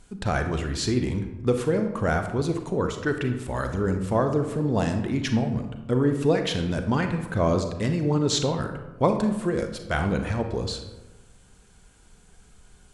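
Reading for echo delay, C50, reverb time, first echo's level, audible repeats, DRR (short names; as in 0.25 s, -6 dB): none, 7.5 dB, 1.1 s, none, none, 6.0 dB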